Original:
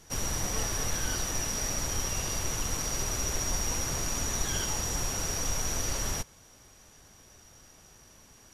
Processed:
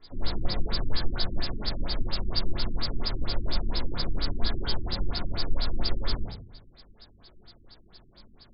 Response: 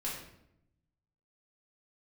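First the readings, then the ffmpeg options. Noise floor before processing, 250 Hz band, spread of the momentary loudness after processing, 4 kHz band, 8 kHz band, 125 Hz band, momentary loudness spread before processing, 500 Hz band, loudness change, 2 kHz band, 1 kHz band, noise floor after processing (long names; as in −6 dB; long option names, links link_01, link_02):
−56 dBFS, +2.5 dB, 3 LU, +2.0 dB, below −40 dB, +2.5 dB, 1 LU, −0.5 dB, −2.0 dB, −4.0 dB, −2.5 dB, −56 dBFS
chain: -filter_complex "[0:a]aexciter=amount=9.2:drive=9.8:freq=4400[link_01];[1:a]atrim=start_sample=2205,asetrate=57330,aresample=44100[link_02];[link_01][link_02]afir=irnorm=-1:irlink=0,afftfilt=real='re*lt(b*sr/1024,350*pow(5300/350,0.5+0.5*sin(2*PI*4.3*pts/sr)))':imag='im*lt(b*sr/1024,350*pow(5300/350,0.5+0.5*sin(2*PI*4.3*pts/sr)))':win_size=1024:overlap=0.75"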